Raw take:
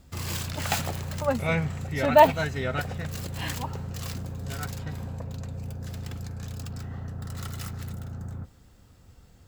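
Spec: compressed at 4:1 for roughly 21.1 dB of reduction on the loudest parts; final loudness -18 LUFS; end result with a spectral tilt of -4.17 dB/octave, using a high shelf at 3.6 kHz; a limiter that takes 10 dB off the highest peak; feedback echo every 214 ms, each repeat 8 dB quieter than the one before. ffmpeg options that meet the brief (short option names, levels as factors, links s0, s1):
-af "highshelf=f=3600:g=9,acompressor=threshold=0.0158:ratio=4,alimiter=level_in=1.68:limit=0.0631:level=0:latency=1,volume=0.596,aecho=1:1:214|428|642|856|1070:0.398|0.159|0.0637|0.0255|0.0102,volume=10.6"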